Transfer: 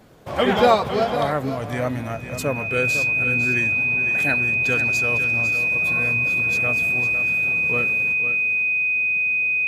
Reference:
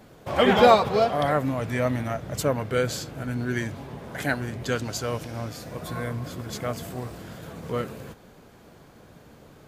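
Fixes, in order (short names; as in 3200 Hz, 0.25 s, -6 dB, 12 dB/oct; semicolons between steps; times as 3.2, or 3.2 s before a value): notch 2500 Hz, Q 30; inverse comb 0.504 s -10 dB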